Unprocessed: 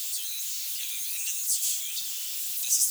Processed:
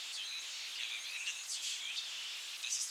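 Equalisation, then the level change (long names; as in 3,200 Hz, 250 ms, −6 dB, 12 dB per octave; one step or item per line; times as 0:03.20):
band-pass filter 150–2,700 Hz
+3.5 dB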